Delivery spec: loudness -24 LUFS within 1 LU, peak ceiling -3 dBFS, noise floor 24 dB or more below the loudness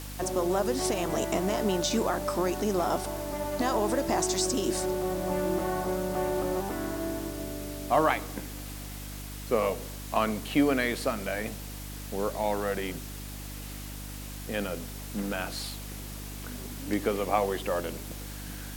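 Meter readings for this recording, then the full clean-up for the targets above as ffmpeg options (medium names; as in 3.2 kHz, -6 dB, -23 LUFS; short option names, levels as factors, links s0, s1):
hum 50 Hz; highest harmonic 300 Hz; hum level -38 dBFS; noise floor -40 dBFS; noise floor target -55 dBFS; loudness -30.5 LUFS; peak level -10.0 dBFS; loudness target -24.0 LUFS
-> -af "bandreject=f=50:t=h:w=4,bandreject=f=100:t=h:w=4,bandreject=f=150:t=h:w=4,bandreject=f=200:t=h:w=4,bandreject=f=250:t=h:w=4,bandreject=f=300:t=h:w=4"
-af "afftdn=nr=15:nf=-40"
-af "volume=2.11"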